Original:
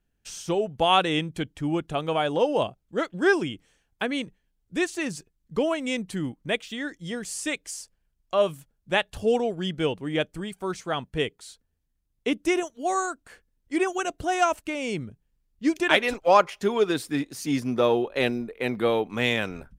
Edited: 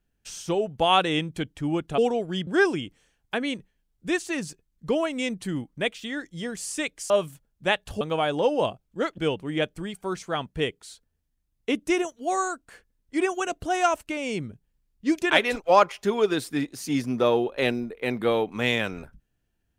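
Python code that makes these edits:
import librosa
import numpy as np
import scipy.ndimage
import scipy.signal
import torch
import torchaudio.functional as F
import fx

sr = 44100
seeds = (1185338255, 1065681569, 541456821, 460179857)

y = fx.edit(x, sr, fx.swap(start_s=1.98, length_s=1.17, other_s=9.27, other_length_s=0.49),
    fx.cut(start_s=7.78, length_s=0.58), tone=tone)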